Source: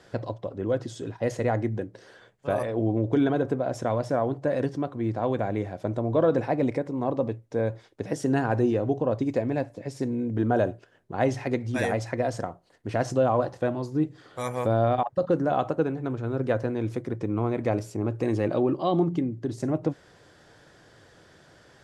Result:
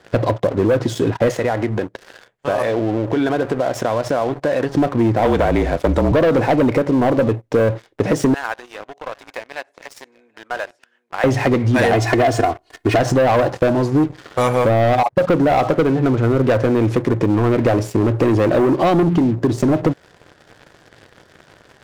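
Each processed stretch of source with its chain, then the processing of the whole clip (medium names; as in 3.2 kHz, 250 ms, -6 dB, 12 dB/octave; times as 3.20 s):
1.31–4.75 s: bass shelf 460 Hz -8.5 dB + compression 3:1, threshold -35 dBFS
5.25–6.12 s: treble shelf 2.9 kHz +7 dB + frequency shift -37 Hz
8.34–11.24 s: compression 2.5:1, threshold -32 dBFS + high-pass 1.2 kHz + delay 784 ms -17.5 dB
11.93–12.99 s: comb 2.8 ms, depth 96% + tape noise reduction on one side only encoder only
whole clip: tone controls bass -2 dB, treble -7 dB; waveshaping leveller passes 3; compression, threshold -21 dBFS; trim +8.5 dB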